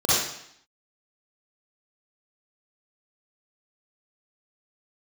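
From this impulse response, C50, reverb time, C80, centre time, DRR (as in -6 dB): -5.5 dB, 0.70 s, 1.0 dB, 84 ms, -9.0 dB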